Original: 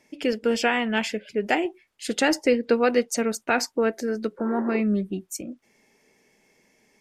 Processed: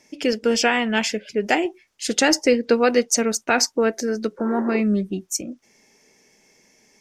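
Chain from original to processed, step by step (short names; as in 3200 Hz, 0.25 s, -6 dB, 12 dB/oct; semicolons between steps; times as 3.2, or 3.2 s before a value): bell 5900 Hz +9 dB 0.66 oct; gain +3 dB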